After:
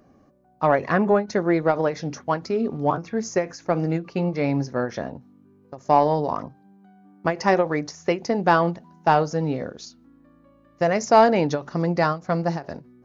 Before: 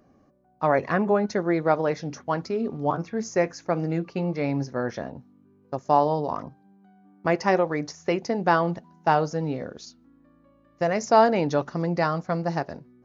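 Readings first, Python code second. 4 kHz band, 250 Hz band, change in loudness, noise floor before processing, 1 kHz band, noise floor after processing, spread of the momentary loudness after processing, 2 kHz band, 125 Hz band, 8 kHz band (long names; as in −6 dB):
+3.0 dB, +2.5 dB, +2.5 dB, −60 dBFS, +2.5 dB, −56 dBFS, 11 LU, +2.5 dB, +2.5 dB, can't be measured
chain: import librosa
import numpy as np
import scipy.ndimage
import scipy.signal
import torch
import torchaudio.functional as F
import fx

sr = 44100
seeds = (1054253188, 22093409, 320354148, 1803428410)

p1 = 10.0 ** (-13.5 / 20.0) * np.tanh(x / 10.0 ** (-13.5 / 20.0))
p2 = x + (p1 * librosa.db_to_amplitude(-6.0))
y = fx.end_taper(p2, sr, db_per_s=220.0)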